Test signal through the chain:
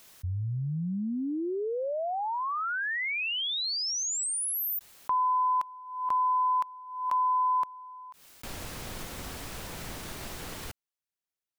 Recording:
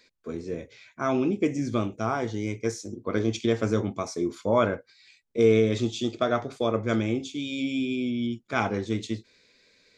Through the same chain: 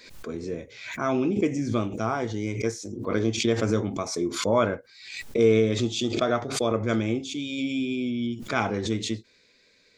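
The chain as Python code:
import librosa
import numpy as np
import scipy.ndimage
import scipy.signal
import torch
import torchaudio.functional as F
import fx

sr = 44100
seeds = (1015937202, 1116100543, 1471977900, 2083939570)

y = fx.pre_swell(x, sr, db_per_s=71.0)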